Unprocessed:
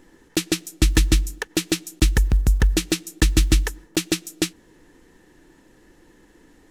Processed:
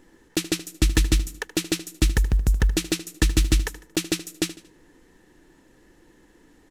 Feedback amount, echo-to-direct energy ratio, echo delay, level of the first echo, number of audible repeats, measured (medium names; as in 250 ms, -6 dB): 38%, -14.5 dB, 76 ms, -15.0 dB, 3